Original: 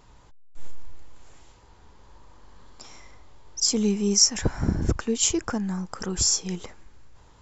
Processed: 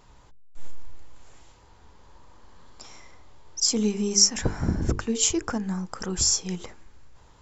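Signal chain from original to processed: notches 50/100/150/200/250/300/350/400/450 Hz

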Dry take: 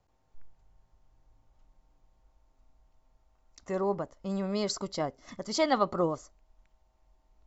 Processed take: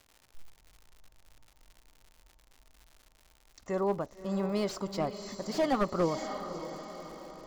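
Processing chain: diffused feedback echo 0.578 s, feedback 50%, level -11 dB; crackle 140/s -42 dBFS; slew limiter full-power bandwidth 49 Hz

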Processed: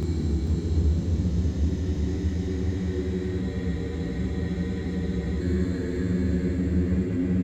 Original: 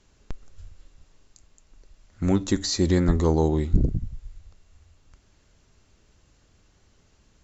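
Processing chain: elliptic band-stop 450–1500 Hz; low shelf 150 Hz +9 dB; negative-ratio compressor -29 dBFS, ratio -1; sample leveller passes 3; Paulstretch 47×, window 0.10 s, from 2.86; doubler 27 ms -2 dB; on a send: frequency-shifting echo 0.472 s, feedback 35%, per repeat +100 Hz, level -9.5 dB; on the sum: spectral freeze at 3.44, 1.97 s; gain -5.5 dB

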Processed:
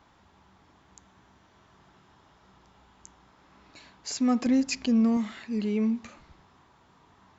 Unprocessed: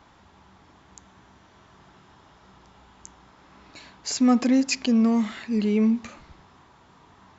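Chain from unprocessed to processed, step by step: 4.46–5.17 low shelf 130 Hz +11.5 dB; gain -5.5 dB

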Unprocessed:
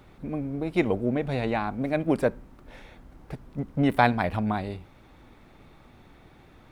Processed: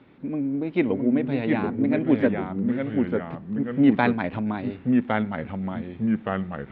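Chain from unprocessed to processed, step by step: speaker cabinet 130–3500 Hz, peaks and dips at 270 Hz +8 dB, 730 Hz -6 dB, 1200 Hz -4 dB; echoes that change speed 0.621 s, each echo -2 st, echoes 2

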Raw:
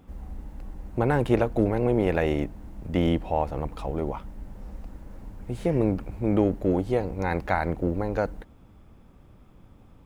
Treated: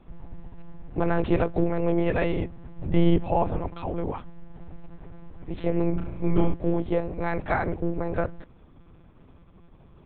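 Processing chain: monotone LPC vocoder at 8 kHz 170 Hz; 2.79–3.57 low shelf 410 Hz +6.5 dB; 5.9–6.54 flutter echo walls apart 5.9 m, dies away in 0.5 s

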